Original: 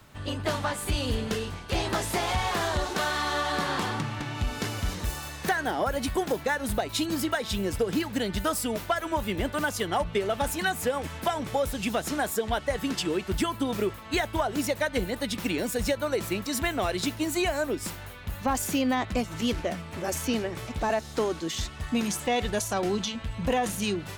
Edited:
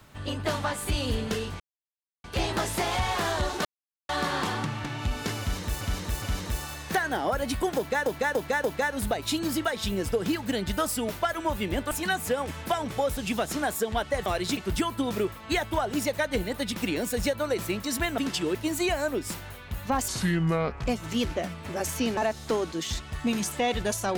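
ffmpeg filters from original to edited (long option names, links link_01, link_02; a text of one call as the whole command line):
ffmpeg -i in.wav -filter_complex "[0:a]asplit=17[link_01][link_02][link_03][link_04][link_05][link_06][link_07][link_08][link_09][link_10][link_11][link_12][link_13][link_14][link_15][link_16][link_17];[link_01]atrim=end=1.6,asetpts=PTS-STARTPTS,afade=type=out:start_time=1.596:duration=0.004:curve=hsin,apad=pad_dur=0.64[link_18];[link_02]atrim=start=1.6:end=3.01,asetpts=PTS-STARTPTS,afade=type=in:duration=0.004:curve=hsin,afade=type=out:start_time=1.406:duration=0.004:curve=hsin[link_19];[link_03]atrim=start=3.01:end=3.45,asetpts=PTS-STARTPTS,volume=0[link_20];[link_04]atrim=start=3.45:end=5.172,asetpts=PTS-STARTPTS,afade=type=in:duration=0.004:curve=hsin[link_21];[link_05]atrim=start=4.758:end=5.172[link_22];[link_06]atrim=start=4.758:end=6.602[link_23];[link_07]atrim=start=6.308:end=6.602[link_24];[link_08]atrim=start=6.308:end=6.602[link_25];[link_09]atrim=start=6.308:end=9.582[link_26];[link_10]atrim=start=10.468:end=12.822[link_27];[link_11]atrim=start=16.798:end=17.112[link_28];[link_12]atrim=start=13.188:end=16.802[link_29];[link_13]atrim=start=12.818:end=13.192[link_30];[link_14]atrim=start=17.108:end=18.644[link_31];[link_15]atrim=start=18.64:end=19.14,asetpts=PTS-STARTPTS,asetrate=28224,aresample=44100,atrim=end_sample=34453,asetpts=PTS-STARTPTS[link_32];[link_16]atrim=start=19.136:end=20.452[link_33];[link_17]atrim=start=20.848[link_34];[link_18][link_19][link_20][link_21]concat=n=4:v=0:a=1[link_35];[link_35][link_22]acrossfade=duration=0.004:curve1=hsin:curve2=hsin[link_36];[link_36][link_23]acrossfade=duration=0.004:curve1=hsin:curve2=hsin[link_37];[link_37][link_24]acrossfade=duration=0.004:curve1=hsin:curve2=hsin[link_38];[link_38][link_25]acrossfade=duration=0.004:curve1=hsin:curve2=hsin[link_39];[link_39][link_26]acrossfade=duration=0.004:curve1=hsin:curve2=hsin[link_40];[link_40][link_27]acrossfade=duration=0.004:curve1=hsin:curve2=hsin[link_41];[link_41][link_28]acrossfade=duration=0.004:curve1=hsin:curve2=hsin[link_42];[link_42][link_29]acrossfade=duration=0.004:curve1=hsin:curve2=hsin[link_43];[link_43][link_30]acrossfade=duration=0.004:curve1=hsin:curve2=hsin[link_44];[link_44][link_31]acrossfade=duration=0.004:curve1=hsin:curve2=hsin[link_45];[link_45][link_32]acrossfade=duration=0.004:curve1=hsin:curve2=hsin[link_46];[link_46][link_33]acrossfade=duration=0.004:curve1=hsin:curve2=hsin[link_47];[link_47][link_34]acrossfade=duration=0.004:curve1=hsin:curve2=hsin" out.wav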